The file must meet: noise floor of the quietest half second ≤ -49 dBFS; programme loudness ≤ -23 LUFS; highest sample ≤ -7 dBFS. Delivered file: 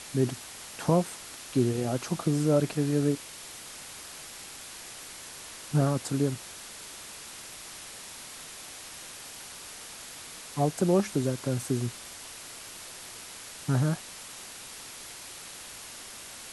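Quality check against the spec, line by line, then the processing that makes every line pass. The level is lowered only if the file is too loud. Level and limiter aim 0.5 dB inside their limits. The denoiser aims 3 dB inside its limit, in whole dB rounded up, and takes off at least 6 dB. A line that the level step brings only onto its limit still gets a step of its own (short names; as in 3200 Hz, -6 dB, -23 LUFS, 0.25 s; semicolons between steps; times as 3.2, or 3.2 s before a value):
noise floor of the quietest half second -44 dBFS: fail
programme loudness -32.5 LUFS: OK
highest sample -10.5 dBFS: OK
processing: denoiser 8 dB, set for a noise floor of -44 dBFS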